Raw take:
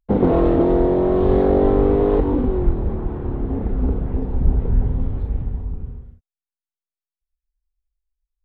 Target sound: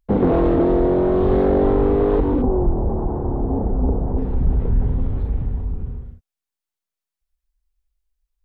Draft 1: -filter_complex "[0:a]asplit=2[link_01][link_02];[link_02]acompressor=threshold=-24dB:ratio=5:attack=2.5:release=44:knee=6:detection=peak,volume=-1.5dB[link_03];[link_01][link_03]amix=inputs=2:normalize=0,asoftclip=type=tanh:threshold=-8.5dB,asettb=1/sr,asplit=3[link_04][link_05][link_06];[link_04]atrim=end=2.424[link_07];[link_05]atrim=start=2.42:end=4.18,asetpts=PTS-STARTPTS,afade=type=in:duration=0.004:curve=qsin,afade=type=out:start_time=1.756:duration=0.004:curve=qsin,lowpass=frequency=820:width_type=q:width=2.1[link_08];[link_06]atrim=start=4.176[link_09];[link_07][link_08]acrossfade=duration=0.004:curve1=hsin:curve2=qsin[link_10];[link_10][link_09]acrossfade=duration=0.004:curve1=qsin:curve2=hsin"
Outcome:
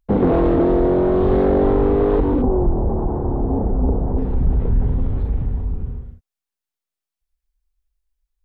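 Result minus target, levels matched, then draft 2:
downward compressor: peak gain reduction −6.5 dB
-filter_complex "[0:a]asplit=2[link_01][link_02];[link_02]acompressor=threshold=-32dB:ratio=5:attack=2.5:release=44:knee=6:detection=peak,volume=-1.5dB[link_03];[link_01][link_03]amix=inputs=2:normalize=0,asoftclip=type=tanh:threshold=-8.5dB,asettb=1/sr,asplit=3[link_04][link_05][link_06];[link_04]atrim=end=2.424[link_07];[link_05]atrim=start=2.42:end=4.18,asetpts=PTS-STARTPTS,afade=type=in:duration=0.004:curve=qsin,afade=type=out:start_time=1.756:duration=0.004:curve=qsin,lowpass=frequency=820:width_type=q:width=2.1[link_08];[link_06]atrim=start=4.176[link_09];[link_07][link_08]acrossfade=duration=0.004:curve1=hsin:curve2=qsin[link_10];[link_10][link_09]acrossfade=duration=0.004:curve1=qsin:curve2=hsin"

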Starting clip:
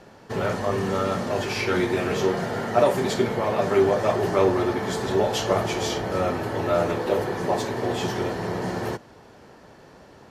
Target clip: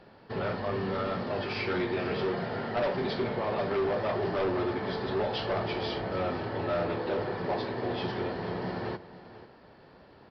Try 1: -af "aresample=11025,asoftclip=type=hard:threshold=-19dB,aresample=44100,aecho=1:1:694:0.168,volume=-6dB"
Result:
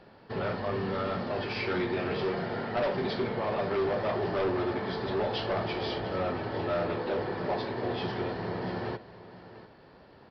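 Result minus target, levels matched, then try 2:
echo 205 ms late
-af "aresample=11025,asoftclip=type=hard:threshold=-19dB,aresample=44100,aecho=1:1:489:0.168,volume=-6dB"

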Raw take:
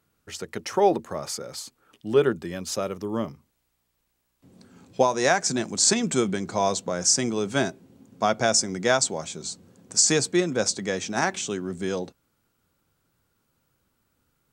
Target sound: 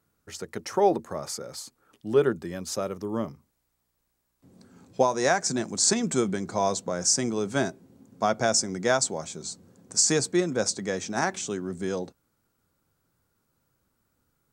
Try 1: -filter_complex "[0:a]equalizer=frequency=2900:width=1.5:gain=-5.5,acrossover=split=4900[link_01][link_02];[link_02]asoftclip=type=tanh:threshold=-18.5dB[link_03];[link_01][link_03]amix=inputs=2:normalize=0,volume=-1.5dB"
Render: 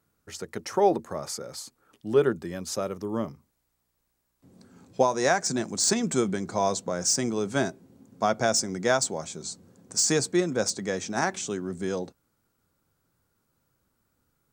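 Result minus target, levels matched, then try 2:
soft clipping: distortion +18 dB
-filter_complex "[0:a]equalizer=frequency=2900:width=1.5:gain=-5.5,acrossover=split=4900[link_01][link_02];[link_02]asoftclip=type=tanh:threshold=-6.5dB[link_03];[link_01][link_03]amix=inputs=2:normalize=0,volume=-1.5dB"

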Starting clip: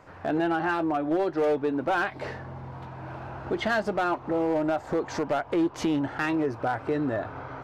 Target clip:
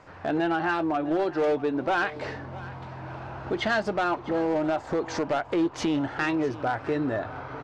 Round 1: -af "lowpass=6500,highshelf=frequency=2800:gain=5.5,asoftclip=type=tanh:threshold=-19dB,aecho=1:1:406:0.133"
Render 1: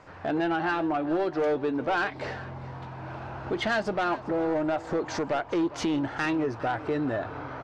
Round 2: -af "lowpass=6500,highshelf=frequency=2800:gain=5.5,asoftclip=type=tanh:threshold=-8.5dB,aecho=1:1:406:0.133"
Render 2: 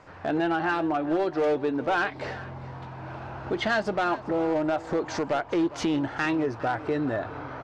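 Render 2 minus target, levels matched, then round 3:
echo 246 ms early
-af "lowpass=6500,highshelf=frequency=2800:gain=5.5,asoftclip=type=tanh:threshold=-8.5dB,aecho=1:1:652:0.133"

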